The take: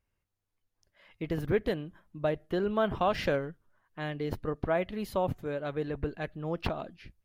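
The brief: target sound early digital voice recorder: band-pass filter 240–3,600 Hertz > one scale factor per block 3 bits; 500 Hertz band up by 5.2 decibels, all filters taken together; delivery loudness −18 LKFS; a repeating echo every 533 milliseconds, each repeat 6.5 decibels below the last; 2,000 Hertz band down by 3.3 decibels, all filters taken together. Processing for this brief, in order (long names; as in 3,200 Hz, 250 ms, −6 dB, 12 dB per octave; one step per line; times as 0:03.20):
band-pass filter 240–3,600 Hz
parametric band 500 Hz +7 dB
parametric band 2,000 Hz −4.5 dB
repeating echo 533 ms, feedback 47%, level −6.5 dB
one scale factor per block 3 bits
level +10 dB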